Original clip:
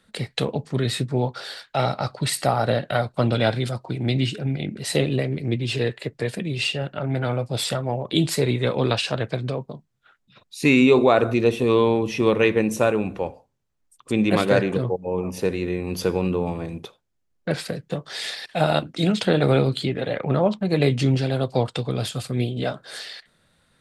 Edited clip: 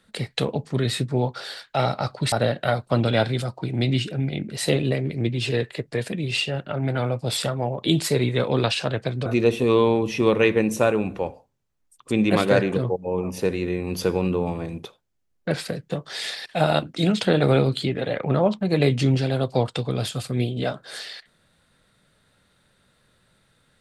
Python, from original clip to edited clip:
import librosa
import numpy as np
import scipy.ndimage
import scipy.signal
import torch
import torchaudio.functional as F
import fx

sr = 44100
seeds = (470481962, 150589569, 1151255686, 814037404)

y = fx.edit(x, sr, fx.cut(start_s=2.32, length_s=0.27),
    fx.cut(start_s=9.53, length_s=1.73), tone=tone)